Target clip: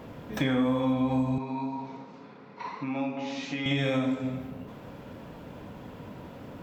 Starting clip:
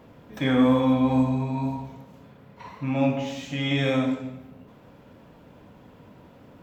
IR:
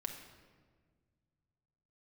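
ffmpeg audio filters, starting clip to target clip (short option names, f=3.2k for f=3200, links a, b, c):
-filter_complex "[0:a]acompressor=threshold=-32dB:ratio=4,asettb=1/sr,asplit=3[a][b][c];[a]atrim=end=1.384[d];[b]atrim=start=1.38:end=3.66,asetpts=PTS-STARTPTS,afade=t=in:d=0.004:c=qsin,afade=t=out:st=2.276:d=0.004:c=qsin,highpass=280,equalizer=f=600:t=q:w=4:g=-9,equalizer=f=1.7k:t=q:w=4:g=-4,equalizer=f=3.1k:t=q:w=4:g=-8,lowpass=f=5.3k:w=0.5412,lowpass=f=5.3k:w=1.3066[e];[c]atrim=start=3.656[f];[d][e]acrossfade=d=0.004:c1=hsin:c2=qsin[g];[g][f]acrossfade=d=0.004:c1=qsin:c2=hsin,volume=6.5dB"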